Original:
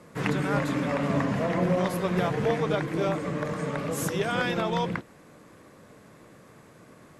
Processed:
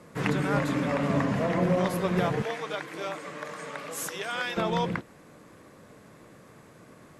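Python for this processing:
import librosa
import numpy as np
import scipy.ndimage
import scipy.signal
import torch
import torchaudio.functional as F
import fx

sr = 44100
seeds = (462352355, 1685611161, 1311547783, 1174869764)

y = fx.highpass(x, sr, hz=1200.0, slope=6, at=(2.42, 4.57))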